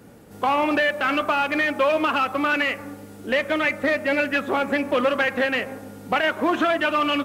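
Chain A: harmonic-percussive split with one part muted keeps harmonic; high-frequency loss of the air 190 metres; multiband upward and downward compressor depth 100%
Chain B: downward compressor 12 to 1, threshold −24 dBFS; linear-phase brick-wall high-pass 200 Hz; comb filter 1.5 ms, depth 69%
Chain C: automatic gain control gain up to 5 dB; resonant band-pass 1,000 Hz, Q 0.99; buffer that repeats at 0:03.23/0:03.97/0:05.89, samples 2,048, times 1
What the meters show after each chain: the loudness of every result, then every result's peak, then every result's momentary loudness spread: −24.0, −26.5, −21.0 LKFS; −10.5, −12.5, −8.0 dBFS; 5, 5, 6 LU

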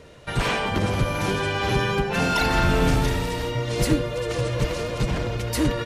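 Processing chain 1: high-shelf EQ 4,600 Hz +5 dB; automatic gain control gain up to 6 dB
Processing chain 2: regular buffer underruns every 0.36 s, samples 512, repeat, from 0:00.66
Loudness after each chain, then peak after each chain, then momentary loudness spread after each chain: −18.5, −23.5 LKFS; −3.0, −8.0 dBFS; 6, 6 LU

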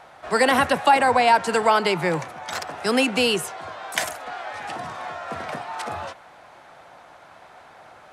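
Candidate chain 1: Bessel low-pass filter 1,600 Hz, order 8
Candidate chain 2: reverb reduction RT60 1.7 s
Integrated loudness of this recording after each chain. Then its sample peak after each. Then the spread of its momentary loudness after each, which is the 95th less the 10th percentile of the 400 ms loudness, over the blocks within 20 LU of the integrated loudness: −24.0, −22.5 LKFS; −7.5, −5.5 dBFS; 16, 18 LU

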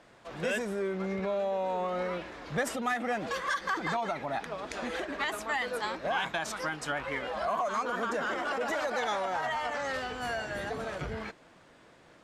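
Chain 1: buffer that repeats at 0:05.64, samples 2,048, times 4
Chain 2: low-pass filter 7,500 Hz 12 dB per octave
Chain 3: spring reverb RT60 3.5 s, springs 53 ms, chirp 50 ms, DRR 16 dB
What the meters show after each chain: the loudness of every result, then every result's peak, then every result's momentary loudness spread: −33.0, −33.0, −32.5 LKFS; −19.0, −19.0, −18.5 dBFS; 5, 5, 5 LU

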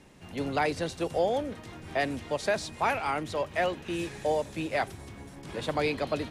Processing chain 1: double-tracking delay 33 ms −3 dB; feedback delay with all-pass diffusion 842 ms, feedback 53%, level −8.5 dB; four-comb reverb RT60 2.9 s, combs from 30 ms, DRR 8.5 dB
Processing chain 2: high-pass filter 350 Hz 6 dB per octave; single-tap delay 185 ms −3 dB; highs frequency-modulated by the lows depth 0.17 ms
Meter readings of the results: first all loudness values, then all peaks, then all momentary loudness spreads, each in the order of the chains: −28.0, −30.5 LKFS; −12.5, −14.5 dBFS; 7, 9 LU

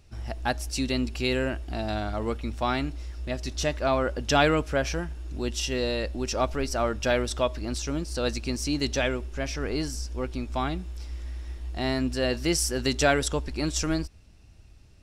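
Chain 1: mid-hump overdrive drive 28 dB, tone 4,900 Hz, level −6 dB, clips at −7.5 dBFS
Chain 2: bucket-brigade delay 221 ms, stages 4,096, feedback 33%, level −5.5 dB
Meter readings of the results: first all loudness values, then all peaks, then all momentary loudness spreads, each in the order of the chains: −18.0, −27.5 LKFS; −8.0, −7.5 dBFS; 7, 10 LU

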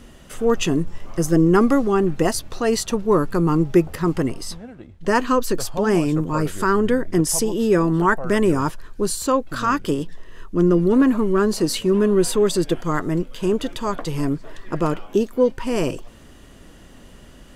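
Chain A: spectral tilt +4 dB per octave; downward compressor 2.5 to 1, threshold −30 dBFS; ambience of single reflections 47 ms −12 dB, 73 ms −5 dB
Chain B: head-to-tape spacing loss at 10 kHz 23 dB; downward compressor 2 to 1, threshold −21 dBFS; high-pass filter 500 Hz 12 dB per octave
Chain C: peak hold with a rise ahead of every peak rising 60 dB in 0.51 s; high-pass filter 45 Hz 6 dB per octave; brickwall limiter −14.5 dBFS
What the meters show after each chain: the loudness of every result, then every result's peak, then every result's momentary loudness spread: −28.5, −31.0, −23.5 LKFS; −11.5, −12.5, −14.5 dBFS; 12, 10, 6 LU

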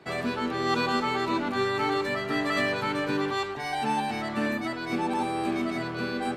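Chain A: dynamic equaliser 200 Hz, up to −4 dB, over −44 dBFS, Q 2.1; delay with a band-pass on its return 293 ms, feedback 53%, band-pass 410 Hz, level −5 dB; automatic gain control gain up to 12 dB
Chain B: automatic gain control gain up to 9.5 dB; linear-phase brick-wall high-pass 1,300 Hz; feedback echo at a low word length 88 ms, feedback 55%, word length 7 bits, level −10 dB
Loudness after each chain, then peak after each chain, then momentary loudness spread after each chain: −17.0, −23.5 LKFS; −2.5, −8.0 dBFS; 5, 9 LU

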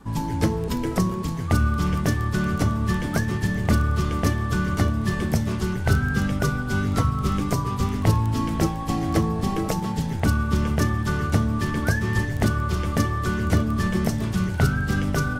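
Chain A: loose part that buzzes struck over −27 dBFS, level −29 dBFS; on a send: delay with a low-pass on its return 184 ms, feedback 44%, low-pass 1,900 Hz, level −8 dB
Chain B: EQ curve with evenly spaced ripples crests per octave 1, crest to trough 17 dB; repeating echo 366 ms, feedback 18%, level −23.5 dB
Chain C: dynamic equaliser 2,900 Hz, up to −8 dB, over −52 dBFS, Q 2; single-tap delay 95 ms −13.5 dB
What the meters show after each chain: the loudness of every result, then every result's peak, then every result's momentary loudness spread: −23.0, −21.5, −23.5 LKFS; −7.5, −3.5, −8.0 dBFS; 3, 4, 3 LU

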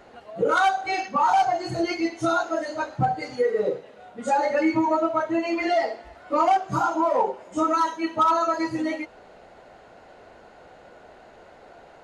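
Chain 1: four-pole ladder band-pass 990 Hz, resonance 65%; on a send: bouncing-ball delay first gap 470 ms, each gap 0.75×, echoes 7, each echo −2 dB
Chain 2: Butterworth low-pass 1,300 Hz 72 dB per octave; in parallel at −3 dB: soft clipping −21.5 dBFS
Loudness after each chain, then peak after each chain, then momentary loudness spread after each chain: −28.0, −21.5 LKFS; −13.0, −9.0 dBFS; 9, 8 LU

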